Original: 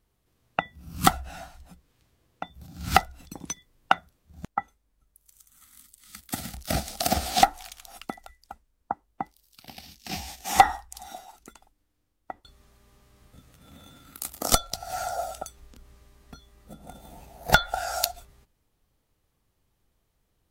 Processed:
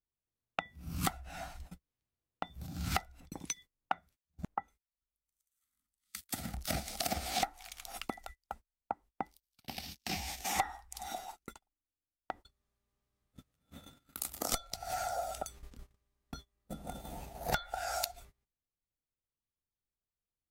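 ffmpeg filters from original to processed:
ffmpeg -i in.wav -filter_complex "[0:a]asettb=1/sr,asplit=3[link_01][link_02][link_03];[link_01]atrim=end=3.204[link_04];[link_02]atrim=start=3.2:end=6.65,asetpts=PTS-STARTPTS,afade=type=in:duration=0.004:curve=qsin,afade=type=out:start_time=3.446:duration=0.004:curve=qsin,acrossover=split=1700[link_05][link_06];[link_05]aeval=exprs='val(0)*(1-0.7/2+0.7/2*cos(2*PI*1.5*n/s))':channel_layout=same[link_07];[link_06]aeval=exprs='val(0)*(1-0.7/2-0.7/2*cos(2*PI*1.5*n/s))':channel_layout=same[link_08];[link_07][link_08]amix=inputs=2:normalize=0[link_09];[link_03]atrim=start=6.646[link_10];[link_04][link_09]acrossfade=duration=0.004:curve1=hsin:curve2=qsin[link_11];[link_11][link_10]acrossfade=duration=0.004:curve1=qsin:curve2=hsin,agate=range=-28dB:threshold=-48dB:ratio=16:detection=peak,adynamicequalizer=threshold=0.00282:dfrequency=2200:dqfactor=4.9:tfrequency=2200:tqfactor=4.9:attack=5:release=100:ratio=0.375:range=3:mode=boostabove:tftype=bell,acompressor=threshold=-38dB:ratio=3,volume=2dB" out.wav

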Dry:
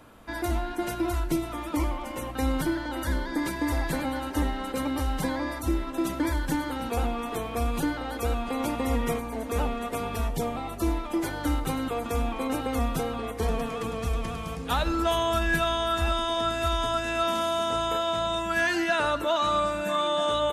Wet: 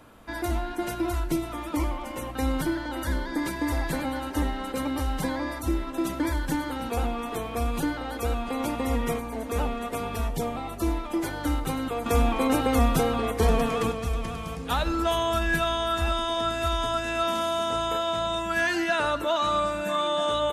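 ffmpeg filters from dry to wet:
ffmpeg -i in.wav -filter_complex "[0:a]asettb=1/sr,asplit=3[link_01][link_02][link_03];[link_01]atrim=end=12.064[link_04];[link_02]atrim=start=12.06:end=13.92,asetpts=PTS-STARTPTS,afade=type=in:duration=0.004:curve=qsin,afade=type=out:start_time=1.856:duration=0.004:curve=qsin,acontrast=46[link_05];[link_03]atrim=start=13.916[link_06];[link_04][link_05]acrossfade=duration=0.004:curve1=hsin:curve2=qsin[link_07];[link_07][link_06]acrossfade=duration=0.004:curve1=qsin:curve2=hsin" out.wav

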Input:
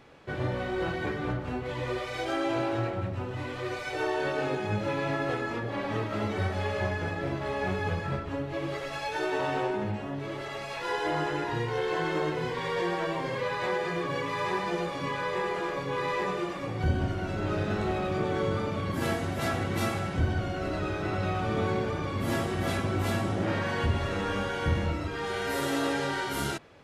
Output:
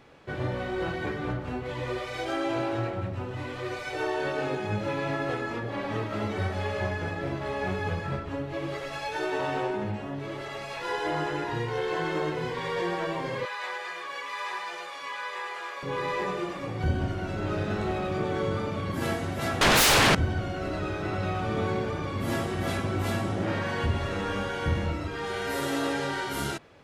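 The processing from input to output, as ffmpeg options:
ffmpeg -i in.wav -filter_complex "[0:a]asettb=1/sr,asplit=3[link_01][link_02][link_03];[link_01]atrim=end=13.454[link_04];[link_02]atrim=start=13.45:end=15.83,asetpts=PTS-STARTPTS,afade=type=in:duration=0.004:curve=qsin,afade=type=out:start_time=2.376:duration=0.004:curve=qsin,highpass=980[link_05];[link_03]atrim=start=15.826[link_06];[link_04][link_05]acrossfade=duration=0.004:curve1=hsin:curve2=qsin[link_07];[link_07][link_06]acrossfade=duration=0.004:curve1=qsin:curve2=hsin,asettb=1/sr,asplit=3[link_08][link_09][link_10];[link_08]atrim=end=19.614[link_11];[link_09]atrim=start=19.61:end=20.15,asetpts=PTS-STARTPTS,afade=type=in:duration=0.004:curve=qsin,afade=type=out:start_time=0.536:duration=0.004:curve=qsin,aeval=exprs='0.15*sin(PI/2*8.91*val(0)/0.15)':channel_layout=same[link_12];[link_10]atrim=start=20.146[link_13];[link_11][link_12]acrossfade=duration=0.004:curve1=hsin:curve2=qsin[link_14];[link_14][link_13]acrossfade=duration=0.004:curve1=qsin:curve2=hsin" out.wav

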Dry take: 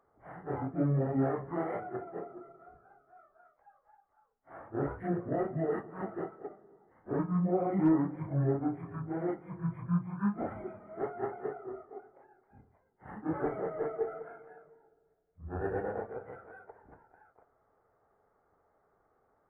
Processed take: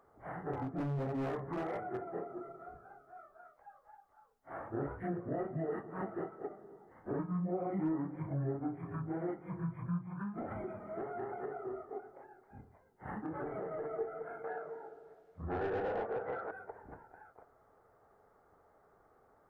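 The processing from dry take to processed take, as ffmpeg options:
ffmpeg -i in.wav -filter_complex "[0:a]asettb=1/sr,asplit=3[link_01][link_02][link_03];[link_01]atrim=end=0.534[link_04];[link_02]atrim=start=0.53:end=2.15,asetpts=PTS-STARTPTS,afade=type=in:duration=0.004:curve=qsin,afade=type=out:start_time=1.616:duration=0.004:curve=qsin,asoftclip=type=hard:threshold=-30.5dB[link_05];[link_03]atrim=start=2.146[link_06];[link_04][link_05]acrossfade=duration=0.004:curve1=hsin:curve2=qsin[link_07];[link_07][link_06]acrossfade=duration=0.004:curve1=qsin:curve2=hsin,asettb=1/sr,asplit=3[link_08][link_09][link_10];[link_08]atrim=end=10.074[link_11];[link_09]atrim=start=10.07:end=13.94,asetpts=PTS-STARTPTS,afade=type=in:duration=0.004:curve=qsin,afade=type=out:start_time=3.866:duration=0.004:curve=qsin,acompressor=threshold=-37dB:ratio=6:attack=3.2:release=140:knee=1:detection=peak[link_12];[link_10]atrim=start=13.936[link_13];[link_11][link_12]acrossfade=duration=0.004:curve1=hsin:curve2=qsin[link_14];[link_14][link_13]acrossfade=duration=0.004:curve1=qsin:curve2=hsin,asettb=1/sr,asplit=3[link_15][link_16][link_17];[link_15]atrim=end=14.444[link_18];[link_16]atrim=start=14.44:end=16.51,asetpts=PTS-STARTPTS,afade=type=in:duration=0.004:curve=qsin,afade=type=out:start_time=2.066:duration=0.004:curve=qsin,asplit=2[link_19][link_20];[link_20]highpass=frequency=720:poles=1,volume=22dB,asoftclip=type=tanh:threshold=-22dB[link_21];[link_19][link_21]amix=inputs=2:normalize=0,lowpass=frequency=1200:poles=1,volume=-6dB[link_22];[link_17]atrim=start=16.506[link_23];[link_18][link_22]acrossfade=duration=0.004:curve1=hsin:curve2=qsin[link_24];[link_24][link_23]acrossfade=duration=0.004:curve1=qsin:curve2=hsin,acompressor=threshold=-44dB:ratio=2.5,volume=5dB" out.wav

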